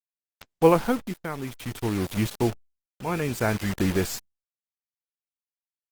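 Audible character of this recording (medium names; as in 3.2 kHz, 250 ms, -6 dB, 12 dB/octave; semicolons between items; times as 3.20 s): a quantiser's noise floor 6-bit, dither none; tremolo triangle 0.58 Hz, depth 75%; Opus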